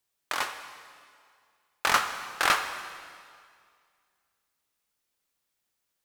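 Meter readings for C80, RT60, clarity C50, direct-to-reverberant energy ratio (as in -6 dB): 9.5 dB, 2.1 s, 8.5 dB, 7.5 dB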